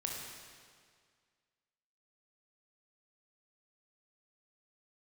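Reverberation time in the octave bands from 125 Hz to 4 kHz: 1.9 s, 1.9 s, 1.9 s, 1.9 s, 1.8 s, 1.8 s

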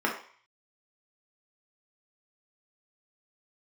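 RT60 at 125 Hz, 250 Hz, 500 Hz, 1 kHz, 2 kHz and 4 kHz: 0.60 s, 0.35 s, 0.40 s, 0.55 s, 0.60 s, 0.55 s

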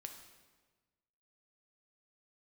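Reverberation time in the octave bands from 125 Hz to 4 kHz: 1.6 s, 1.5 s, 1.4 s, 1.3 s, 1.2 s, 1.1 s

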